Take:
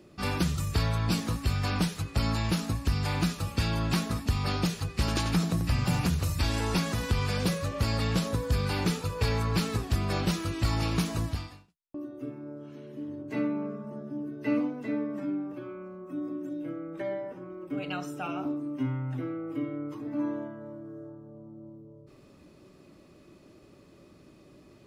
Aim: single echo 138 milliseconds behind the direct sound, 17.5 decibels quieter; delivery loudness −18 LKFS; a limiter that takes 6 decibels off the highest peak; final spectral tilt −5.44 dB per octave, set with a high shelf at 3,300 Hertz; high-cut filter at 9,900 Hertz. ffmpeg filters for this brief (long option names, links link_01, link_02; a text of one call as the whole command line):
ffmpeg -i in.wav -af "lowpass=9900,highshelf=frequency=3300:gain=3,alimiter=limit=-21dB:level=0:latency=1,aecho=1:1:138:0.133,volume=14.5dB" out.wav